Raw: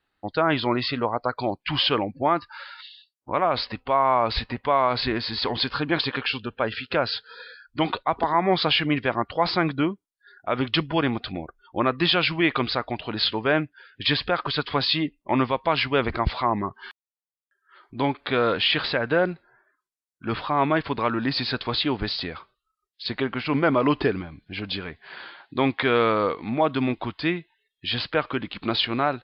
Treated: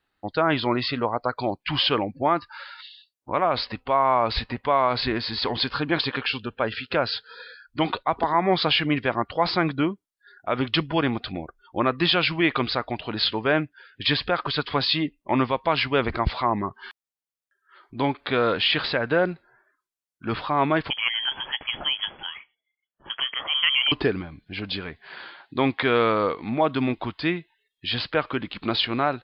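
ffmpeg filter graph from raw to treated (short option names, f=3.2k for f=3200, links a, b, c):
-filter_complex "[0:a]asettb=1/sr,asplit=3[a][b][c];[a]atrim=end=20.904[d];[b]atrim=start=20.9:end=23.92,asetpts=PTS-STARTPTS,afade=t=in:d=0.004:c=qsin,afade=t=out:st=3.016:d=0.004:c=qsin,tremolo=f=140:d=0.4,lowpass=f=2.9k:t=q:w=0.5098,lowpass=f=2.9k:t=q:w=0.6013,lowpass=f=2.9k:t=q:w=0.9,lowpass=f=2.9k:t=q:w=2.563,afreqshift=-3400[e];[c]atrim=start=23.916[f];[d][e]acrossfade=d=0.004:c1=hsin:c2=qsin[g];[g][f]acrossfade=d=0.004:c1=qsin:c2=hsin"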